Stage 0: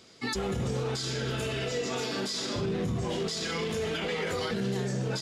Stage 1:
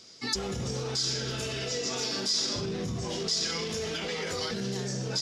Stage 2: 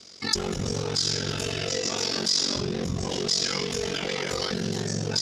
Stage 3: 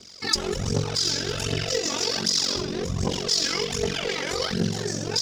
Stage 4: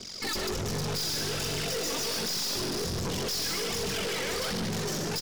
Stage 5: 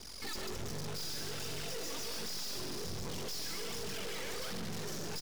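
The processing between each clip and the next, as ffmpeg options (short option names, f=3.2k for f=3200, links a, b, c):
-af "equalizer=f=5.5k:t=o:w=0.76:g=13,volume=-3dB"
-af "aeval=exprs='val(0)*sin(2*PI*23*n/s)':c=same,volume=7dB"
-af "aphaser=in_gain=1:out_gain=1:delay=3.7:decay=0.58:speed=1.3:type=triangular"
-filter_complex "[0:a]asplit=2[a][b];[b]aecho=0:1:60|143|454|506:0.133|0.376|0.266|0.106[c];[a][c]amix=inputs=2:normalize=0,aeval=exprs='(tanh(63.1*val(0)+0.25)-tanh(0.25))/63.1':c=same,volume=6dB"
-af "aeval=exprs='max(val(0),0)':c=same,volume=-2dB"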